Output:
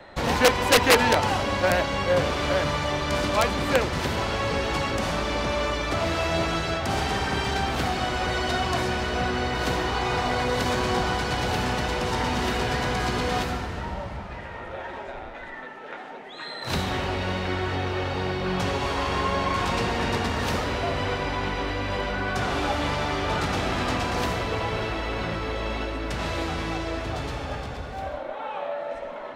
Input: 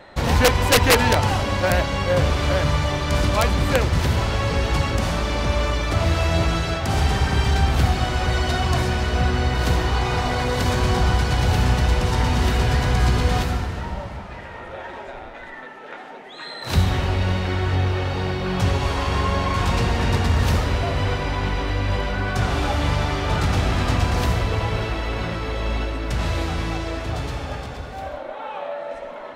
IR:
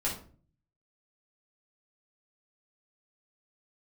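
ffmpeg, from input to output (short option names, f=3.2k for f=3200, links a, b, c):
-filter_complex "[0:a]highshelf=f=7.5k:g=-5,acrossover=split=190|430|2600[a][b][c][d];[a]acompressor=threshold=-30dB:ratio=12[e];[e][b][c][d]amix=inputs=4:normalize=0,volume=-1dB"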